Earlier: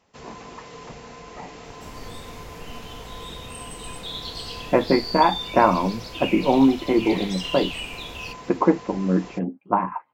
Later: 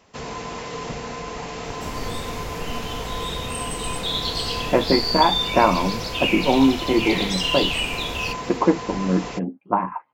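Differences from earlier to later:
first sound +9.5 dB
second sound +8.0 dB

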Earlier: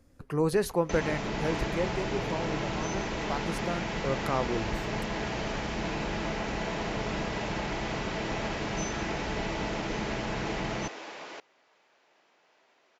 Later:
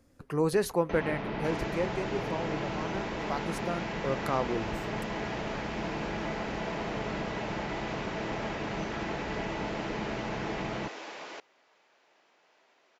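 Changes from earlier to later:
first sound: add high-frequency loss of the air 300 metres
master: add low-shelf EQ 83 Hz −8 dB

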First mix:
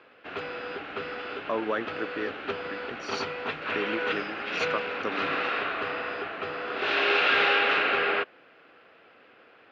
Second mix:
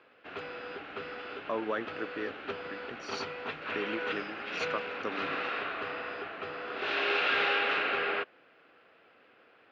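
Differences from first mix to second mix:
speech −4.0 dB
background −5.5 dB

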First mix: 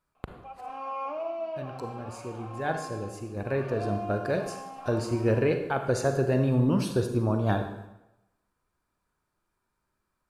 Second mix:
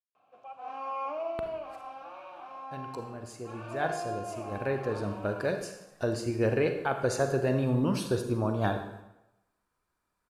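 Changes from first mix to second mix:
speech: entry +1.15 s
master: add low-shelf EQ 330 Hz −5 dB

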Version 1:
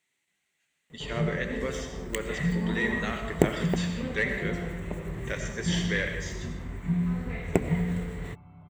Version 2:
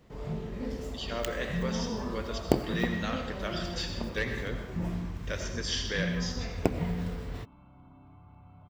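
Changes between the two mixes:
first sound: entry −0.90 s
master: add thirty-one-band graphic EQ 160 Hz −9 dB, 400 Hz −5 dB, 2,000 Hz −10 dB, 5,000 Hz +12 dB, 8,000 Hz −11 dB

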